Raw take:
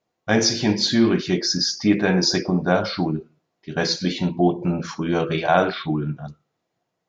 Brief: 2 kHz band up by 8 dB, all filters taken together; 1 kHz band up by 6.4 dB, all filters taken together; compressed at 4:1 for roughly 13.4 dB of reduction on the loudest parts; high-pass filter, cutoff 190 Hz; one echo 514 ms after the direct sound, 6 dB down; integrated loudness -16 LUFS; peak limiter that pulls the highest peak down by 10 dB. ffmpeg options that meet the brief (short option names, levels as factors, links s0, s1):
-af "highpass=190,equalizer=f=1000:t=o:g=8,equalizer=f=2000:t=o:g=7.5,acompressor=threshold=0.0708:ratio=4,alimiter=limit=0.168:level=0:latency=1,aecho=1:1:514:0.501,volume=3.55"